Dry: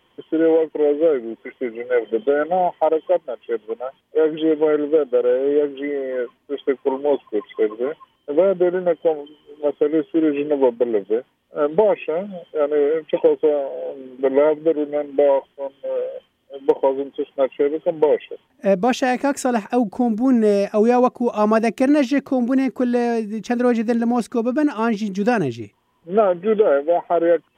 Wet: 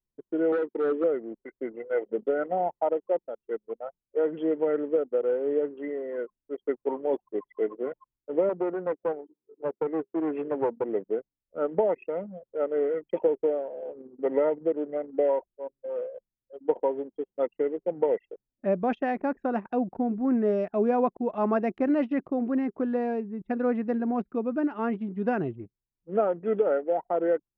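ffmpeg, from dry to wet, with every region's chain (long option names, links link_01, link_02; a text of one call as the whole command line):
ffmpeg -i in.wav -filter_complex "[0:a]asettb=1/sr,asplit=3[link_01][link_02][link_03];[link_01]atrim=end=0.524[link_04];[link_02]atrim=start=0.52:end=1.04,asetpts=PTS-STARTPTS,afade=type=in:duration=0.004:curve=qsin,afade=type=out:start_time=0.516:duration=0.004:curve=qsin,asoftclip=type=hard:threshold=-15.5dB,highpass=170,equalizer=frequency=230:width_type=q:width=4:gain=7,equalizer=frequency=370:width_type=q:width=4:gain=8,equalizer=frequency=650:width_type=q:width=4:gain=-7,equalizer=frequency=1300:width_type=q:width=4:gain=6,equalizer=frequency=2500:width_type=q:width=4:gain=3,equalizer=frequency=3600:width_type=q:width=4:gain=6,lowpass=frequency=5000:width=0.5412,lowpass=frequency=5000:width=1.3066[link_05];[link_03]atrim=start=1.036[link_06];[link_04][link_05]acrossfade=duration=0.004:curve1=hsin:curve2=qsin[link_07];[link_07][link_06]acrossfade=duration=0.004:curve1=qsin:curve2=hsin,asettb=1/sr,asplit=3[link_08][link_09][link_10];[link_08]atrim=end=8.494[link_11];[link_09]atrim=start=8.49:end=10.89,asetpts=PTS-STARTPTS,afade=type=in:duration=0.004:curve=qsin,afade=type=out:start_time=2.396:duration=0.004:curve=qsin,aeval=exprs='clip(val(0),-1,0.119)':channel_layout=same,highpass=160,lowpass=3000[link_12];[link_10]atrim=start=10.886[link_13];[link_11][link_12]acrossfade=duration=0.004:curve1=hsin:curve2=qsin[link_14];[link_14][link_13]acrossfade=duration=0.004:curve1=qsin:curve2=hsin,lowpass=1900,anlmdn=3.98,volume=-8.5dB" out.wav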